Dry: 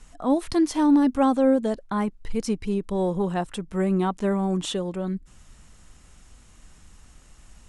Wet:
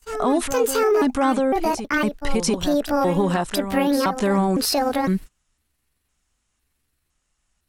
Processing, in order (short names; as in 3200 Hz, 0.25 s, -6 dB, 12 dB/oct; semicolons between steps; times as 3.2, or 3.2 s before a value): trilling pitch shifter +6.5 st, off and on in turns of 0.507 s; tilt shelf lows -4 dB, about 650 Hz; in parallel at +2.5 dB: compressor 6:1, threshold -31 dBFS, peak gain reduction 14 dB; on the sum: limiter -18 dBFS, peak gain reduction 8.5 dB; on a send: reverse echo 0.692 s -10 dB; on the sum: gate -35 dBFS, range -33 dB; gain +5.5 dB